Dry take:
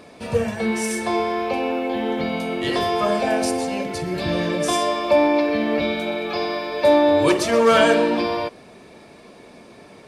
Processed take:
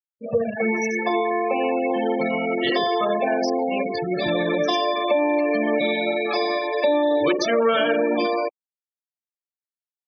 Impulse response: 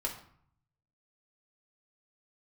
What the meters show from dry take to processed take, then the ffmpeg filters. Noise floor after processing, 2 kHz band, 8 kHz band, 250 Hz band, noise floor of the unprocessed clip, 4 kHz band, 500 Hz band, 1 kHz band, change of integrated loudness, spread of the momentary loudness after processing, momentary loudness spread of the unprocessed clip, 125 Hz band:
under -85 dBFS, 0.0 dB, n/a, -2.0 dB, -46 dBFS, -1.0 dB, -1.0 dB, -1.5 dB, -1.5 dB, 5 LU, 9 LU, -6.0 dB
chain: -filter_complex "[0:a]lowshelf=f=310:g=-8.5,acompressor=threshold=-24dB:ratio=2,lowpass=f=6.5k:w=0.5412,lowpass=f=6.5k:w=1.3066,bandreject=f=960:w=8.4,afftfilt=real='re*gte(hypot(re,im),0.0562)':imag='im*gte(hypot(re,im),0.0562)':win_size=1024:overlap=0.75,anlmdn=3.98,highpass=160,acrossover=split=450|3000[a][b][c];[b]acompressor=threshold=-28dB:ratio=3[d];[a][d][c]amix=inputs=3:normalize=0,afftfilt=real='re*gte(hypot(re,im),0.00562)':imag='im*gte(hypot(re,im),0.00562)':win_size=1024:overlap=0.75,volume=6.5dB"

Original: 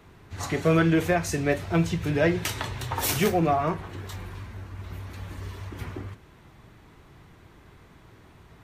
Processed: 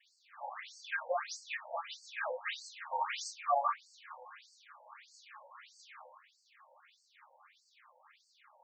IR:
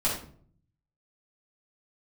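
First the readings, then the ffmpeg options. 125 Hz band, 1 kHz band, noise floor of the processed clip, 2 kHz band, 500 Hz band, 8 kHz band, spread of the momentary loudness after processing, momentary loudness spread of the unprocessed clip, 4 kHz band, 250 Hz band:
under -40 dB, -5.5 dB, -73 dBFS, -9.5 dB, -15.5 dB, -14.0 dB, 22 LU, 18 LU, -10.0 dB, under -40 dB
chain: -filter_complex "[0:a]acrusher=bits=7:mix=0:aa=0.5[a];[1:a]atrim=start_sample=2205,atrim=end_sample=3969,asetrate=83790,aresample=44100[b];[a][b]afir=irnorm=-1:irlink=0,afftfilt=real='re*between(b*sr/1024,680*pow(6100/680,0.5+0.5*sin(2*PI*1.6*pts/sr))/1.41,680*pow(6100/680,0.5+0.5*sin(2*PI*1.6*pts/sr))*1.41)':imag='im*between(b*sr/1024,680*pow(6100/680,0.5+0.5*sin(2*PI*1.6*pts/sr))/1.41,680*pow(6100/680,0.5+0.5*sin(2*PI*1.6*pts/sr))*1.41)':win_size=1024:overlap=0.75,volume=-6dB"

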